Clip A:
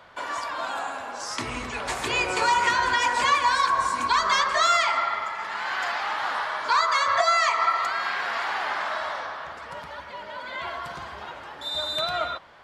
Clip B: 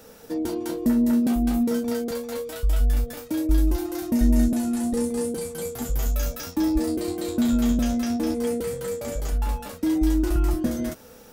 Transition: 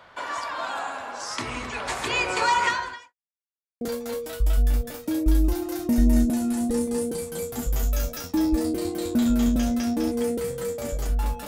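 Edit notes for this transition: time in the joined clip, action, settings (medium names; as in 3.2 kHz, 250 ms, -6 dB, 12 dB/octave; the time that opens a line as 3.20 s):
clip A
2.66–3.14 s: fade out quadratic
3.14–3.81 s: mute
3.81 s: go over to clip B from 2.04 s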